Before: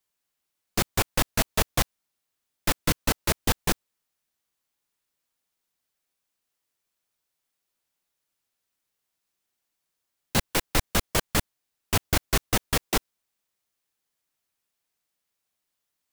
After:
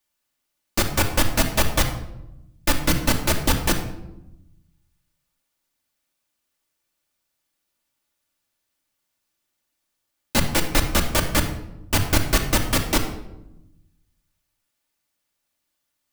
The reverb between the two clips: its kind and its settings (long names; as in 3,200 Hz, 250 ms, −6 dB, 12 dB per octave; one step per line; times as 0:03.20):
rectangular room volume 3,000 cubic metres, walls furnished, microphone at 2.5 metres
level +2.5 dB